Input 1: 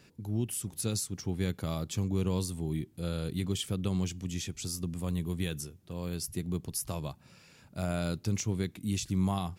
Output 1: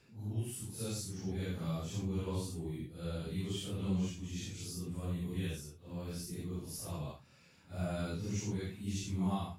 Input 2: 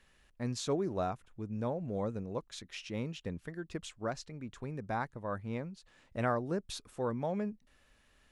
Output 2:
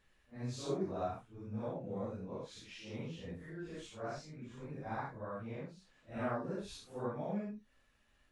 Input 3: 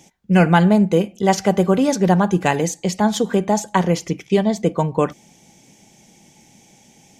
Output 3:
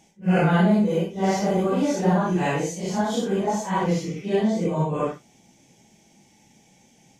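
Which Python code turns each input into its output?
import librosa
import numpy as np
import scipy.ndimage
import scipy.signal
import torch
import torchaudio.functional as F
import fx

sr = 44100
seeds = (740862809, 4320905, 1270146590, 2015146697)

y = fx.phase_scramble(x, sr, seeds[0], window_ms=200)
y = fx.high_shelf(y, sr, hz=5600.0, db=-4.5)
y = y * 10.0 ** (-5.0 / 20.0)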